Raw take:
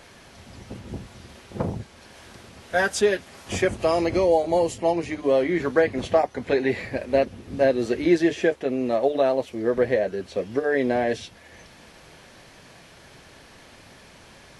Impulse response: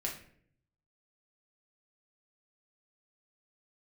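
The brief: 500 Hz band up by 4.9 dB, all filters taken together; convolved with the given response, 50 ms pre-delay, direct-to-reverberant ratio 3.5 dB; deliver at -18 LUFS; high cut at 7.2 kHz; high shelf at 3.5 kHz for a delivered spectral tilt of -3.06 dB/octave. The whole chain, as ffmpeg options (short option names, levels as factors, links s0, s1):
-filter_complex "[0:a]lowpass=7200,equalizer=f=500:t=o:g=6,highshelf=f=3500:g=-7.5,asplit=2[s0][s1];[1:a]atrim=start_sample=2205,adelay=50[s2];[s1][s2]afir=irnorm=-1:irlink=0,volume=0.531[s3];[s0][s3]amix=inputs=2:normalize=0,volume=0.944"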